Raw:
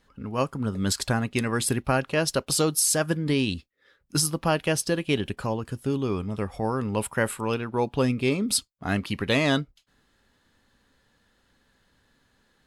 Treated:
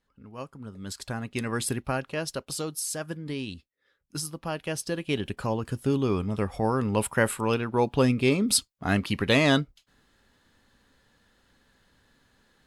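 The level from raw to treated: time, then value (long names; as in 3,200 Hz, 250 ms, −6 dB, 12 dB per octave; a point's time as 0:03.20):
0:00.82 −13 dB
0:01.53 −3 dB
0:02.62 −9.5 dB
0:04.42 −9.5 dB
0:05.70 +1.5 dB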